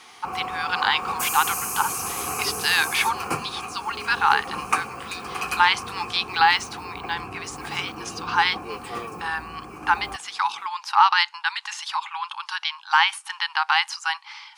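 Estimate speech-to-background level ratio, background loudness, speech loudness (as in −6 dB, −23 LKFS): 6.5 dB, −30.5 LKFS, −24.0 LKFS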